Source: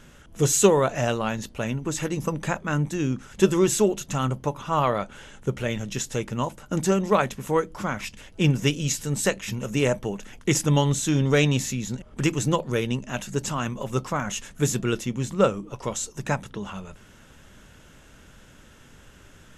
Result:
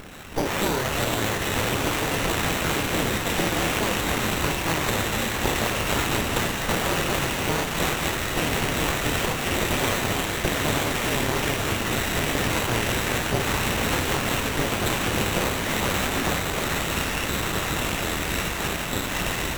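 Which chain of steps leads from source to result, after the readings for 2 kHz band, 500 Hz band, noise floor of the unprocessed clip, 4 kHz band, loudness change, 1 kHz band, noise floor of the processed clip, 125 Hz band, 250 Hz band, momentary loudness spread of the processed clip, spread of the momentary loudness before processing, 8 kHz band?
+8.5 dB, -2.0 dB, -51 dBFS, +8.0 dB, +1.0 dB, +3.5 dB, -28 dBFS, -2.5 dB, -1.5 dB, 2 LU, 10 LU, +1.0 dB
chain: spectral dilation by 60 ms; limiter -12 dBFS, peak gain reduction 11 dB; compressor, threshold -26 dBFS, peak gain reduction 9.5 dB; careless resampling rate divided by 8×, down none, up zero stuff; echoes that change speed 86 ms, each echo -6 st, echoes 3; bit-crush 6-bit; frequency shift -34 Hz; on a send: diffused feedback echo 0.999 s, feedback 64%, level -3 dB; on the sum: running maximum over 9 samples; gain -5.5 dB

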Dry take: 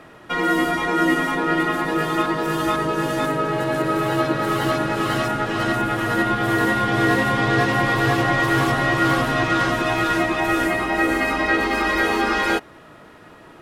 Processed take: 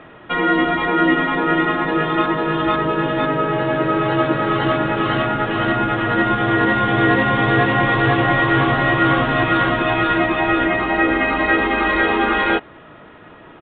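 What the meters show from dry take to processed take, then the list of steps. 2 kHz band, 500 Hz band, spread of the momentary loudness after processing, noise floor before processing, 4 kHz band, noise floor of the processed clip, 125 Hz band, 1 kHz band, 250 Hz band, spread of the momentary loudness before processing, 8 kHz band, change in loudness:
+3.0 dB, +3.0 dB, 4 LU, -45 dBFS, +1.5 dB, -42 dBFS, +3.0 dB, +3.0 dB, +3.0 dB, 4 LU, under -40 dB, +3.0 dB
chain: downsampling 8000 Hz; gain +3 dB

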